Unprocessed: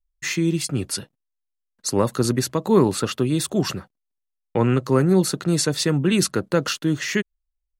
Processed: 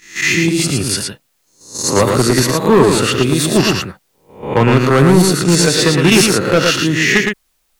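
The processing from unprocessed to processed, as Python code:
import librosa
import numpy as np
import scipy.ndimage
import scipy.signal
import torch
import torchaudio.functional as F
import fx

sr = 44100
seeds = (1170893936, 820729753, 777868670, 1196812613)

p1 = fx.spec_swells(x, sr, rise_s=0.46)
p2 = fx.level_steps(p1, sr, step_db=18)
p3 = p1 + (p2 * librosa.db_to_amplitude(2.0))
p4 = fx.dynamic_eq(p3, sr, hz=2200.0, q=1.2, threshold_db=-36.0, ratio=4.0, max_db=7)
p5 = fx.fold_sine(p4, sr, drive_db=5, ceiling_db=2.5)
p6 = fx.quant_dither(p5, sr, seeds[0], bits=10, dither='triangular')
p7 = p6 + fx.echo_single(p6, sr, ms=113, db=-4.5, dry=0)
y = p7 * librosa.db_to_amplitude(-5.5)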